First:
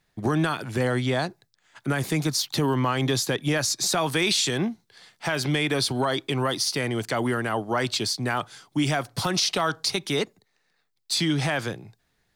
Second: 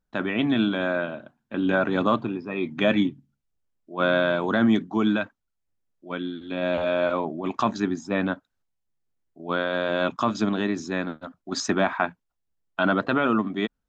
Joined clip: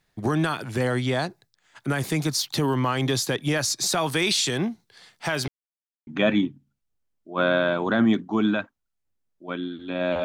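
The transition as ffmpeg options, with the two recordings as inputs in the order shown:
-filter_complex "[0:a]apad=whole_dur=10.24,atrim=end=10.24,asplit=2[a][b];[a]atrim=end=5.48,asetpts=PTS-STARTPTS,afade=t=out:st=5.476:d=0.004:c=hsin[c];[b]atrim=start=5.48:end=6.07,asetpts=PTS-STARTPTS,volume=0[d];[1:a]atrim=start=2.69:end=6.86,asetpts=PTS-STARTPTS,afade=t=in:d=0.004:c=hsin[e];[c][d][e]concat=n=3:v=0:a=1"

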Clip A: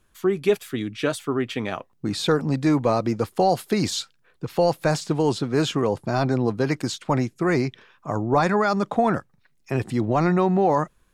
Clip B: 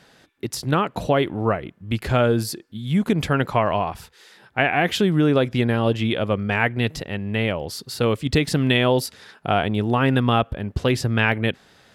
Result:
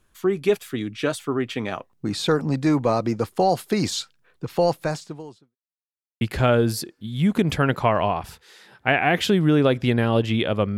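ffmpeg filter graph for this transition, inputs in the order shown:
-filter_complex "[0:a]apad=whole_dur=10.77,atrim=end=10.77,asplit=2[a][b];[a]atrim=end=5.56,asetpts=PTS-STARTPTS,afade=t=out:st=4.7:d=0.86:c=qua[c];[b]atrim=start=5.56:end=6.21,asetpts=PTS-STARTPTS,volume=0[d];[1:a]atrim=start=1.92:end=6.48,asetpts=PTS-STARTPTS,afade=t=in:d=0.004:c=hsin[e];[c][d][e]concat=n=3:v=0:a=1"

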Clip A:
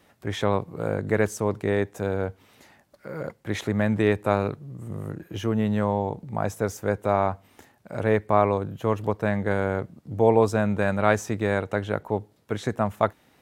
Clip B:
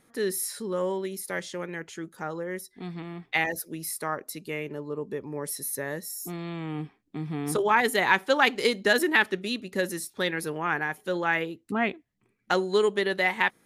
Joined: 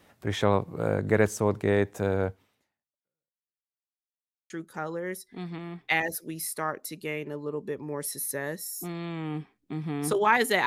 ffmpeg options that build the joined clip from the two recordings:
-filter_complex "[0:a]apad=whole_dur=10.66,atrim=end=10.66,asplit=2[a][b];[a]atrim=end=3.72,asetpts=PTS-STARTPTS,afade=t=out:st=2.28:d=1.44:c=exp[c];[b]atrim=start=3.72:end=4.5,asetpts=PTS-STARTPTS,volume=0[d];[1:a]atrim=start=1.94:end=8.1,asetpts=PTS-STARTPTS,afade=t=in:d=0.004:c=hsin[e];[c][d][e]concat=n=3:v=0:a=1"

